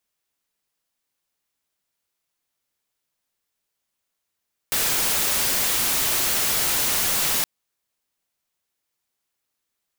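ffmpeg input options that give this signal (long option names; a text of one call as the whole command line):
ffmpeg -f lavfi -i "anoisesrc=color=white:amplitude=0.138:duration=2.72:sample_rate=44100:seed=1" out.wav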